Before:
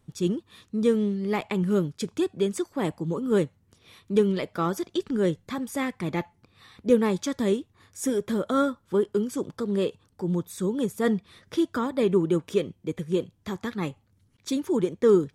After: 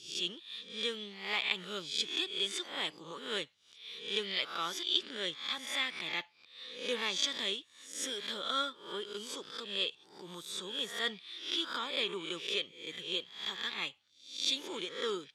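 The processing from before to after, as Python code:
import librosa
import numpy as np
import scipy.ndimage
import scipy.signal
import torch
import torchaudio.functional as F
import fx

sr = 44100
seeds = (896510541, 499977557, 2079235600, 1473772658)

y = fx.spec_swells(x, sr, rise_s=0.53)
y = fx.bandpass_q(y, sr, hz=3400.0, q=2.7)
y = F.gain(torch.from_numpy(y), 8.0).numpy()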